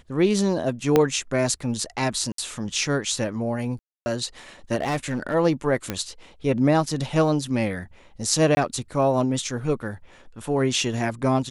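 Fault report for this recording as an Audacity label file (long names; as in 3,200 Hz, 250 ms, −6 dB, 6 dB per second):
0.960000	0.960000	click −5 dBFS
2.320000	2.380000	drop-out 63 ms
3.790000	4.060000	drop-out 270 ms
4.750000	5.350000	clipping −20.5 dBFS
5.900000	5.900000	click −11 dBFS
8.550000	8.570000	drop-out 20 ms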